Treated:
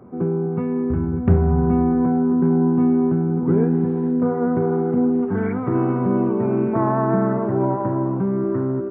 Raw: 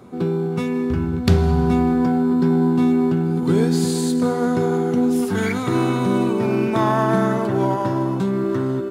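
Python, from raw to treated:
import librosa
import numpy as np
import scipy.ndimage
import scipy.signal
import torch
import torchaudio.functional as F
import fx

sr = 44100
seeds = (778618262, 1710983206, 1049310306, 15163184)

y = scipy.ndimage.gaussian_filter1d(x, 5.6, mode='constant')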